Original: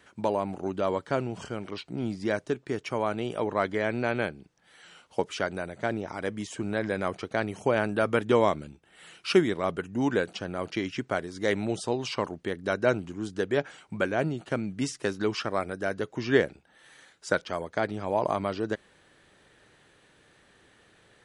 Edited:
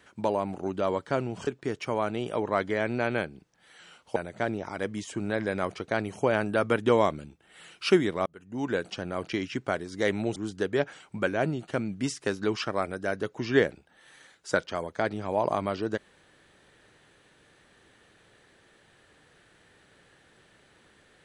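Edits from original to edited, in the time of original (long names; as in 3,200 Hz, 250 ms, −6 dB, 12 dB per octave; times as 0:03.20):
0:01.47–0:02.51: remove
0:05.20–0:05.59: remove
0:09.69–0:10.34: fade in
0:11.79–0:13.14: remove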